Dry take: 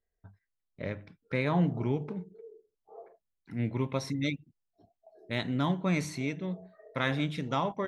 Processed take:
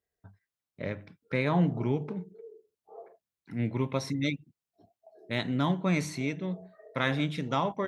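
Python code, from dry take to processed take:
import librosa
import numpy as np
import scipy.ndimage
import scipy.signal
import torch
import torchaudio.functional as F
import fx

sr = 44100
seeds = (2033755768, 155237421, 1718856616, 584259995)

y = scipy.signal.sosfilt(scipy.signal.butter(2, 80.0, 'highpass', fs=sr, output='sos'), x)
y = F.gain(torch.from_numpy(y), 1.5).numpy()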